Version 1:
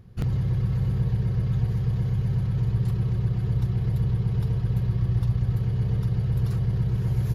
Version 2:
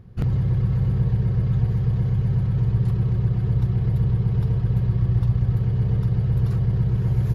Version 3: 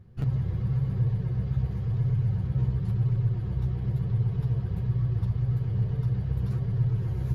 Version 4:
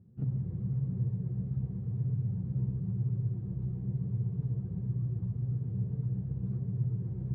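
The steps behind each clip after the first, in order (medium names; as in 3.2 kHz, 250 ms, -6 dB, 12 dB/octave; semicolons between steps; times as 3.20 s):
treble shelf 3 kHz -8.5 dB; trim +3.5 dB
chorus voices 2, 0.95 Hz, delay 11 ms, depth 4 ms; trim -3.5 dB
band-pass filter 210 Hz, Q 1.6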